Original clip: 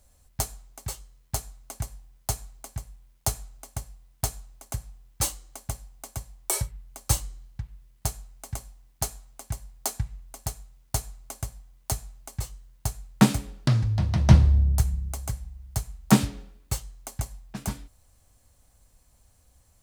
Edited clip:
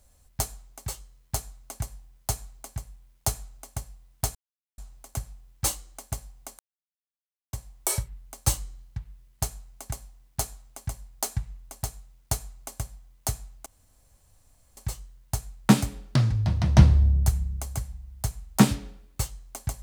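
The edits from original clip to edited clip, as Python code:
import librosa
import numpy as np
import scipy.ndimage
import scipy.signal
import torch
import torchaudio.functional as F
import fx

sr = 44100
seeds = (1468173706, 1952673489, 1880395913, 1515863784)

y = fx.edit(x, sr, fx.insert_silence(at_s=4.35, length_s=0.43),
    fx.insert_silence(at_s=6.16, length_s=0.94),
    fx.insert_room_tone(at_s=12.29, length_s=1.11), tone=tone)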